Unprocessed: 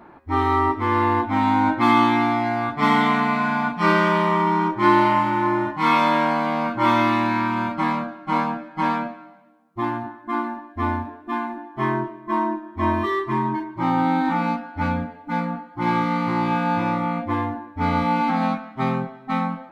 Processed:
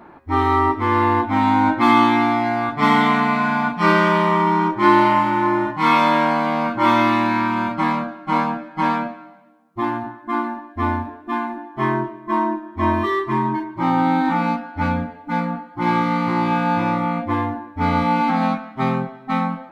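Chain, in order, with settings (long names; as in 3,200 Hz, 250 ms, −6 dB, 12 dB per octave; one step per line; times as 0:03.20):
mains-hum notches 60/120 Hz
level +2.5 dB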